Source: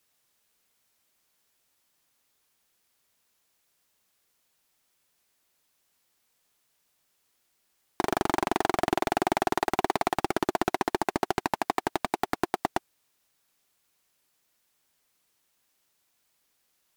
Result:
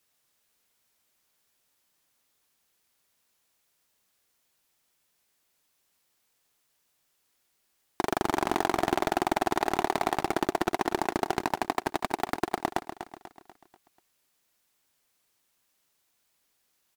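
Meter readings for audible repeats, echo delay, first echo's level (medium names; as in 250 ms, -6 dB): 4, 244 ms, -10.5 dB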